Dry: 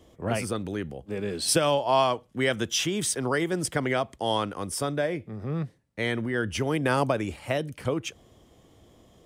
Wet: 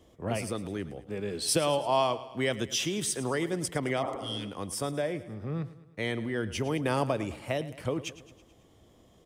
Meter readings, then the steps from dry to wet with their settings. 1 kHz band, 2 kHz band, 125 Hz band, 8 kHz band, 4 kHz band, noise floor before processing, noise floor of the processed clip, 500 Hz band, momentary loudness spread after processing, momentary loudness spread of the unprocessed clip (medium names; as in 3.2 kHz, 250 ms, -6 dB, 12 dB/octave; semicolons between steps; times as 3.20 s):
-4.5 dB, -5.5 dB, -3.5 dB, -3.5 dB, -3.5 dB, -58 dBFS, -60 dBFS, -3.5 dB, 10 LU, 10 LU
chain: dynamic bell 1.5 kHz, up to -6 dB, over -46 dBFS, Q 3.4; spectral replace 4.06–4.45 s, 230–1400 Hz both; feedback delay 108 ms, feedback 55%, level -16 dB; trim -3.5 dB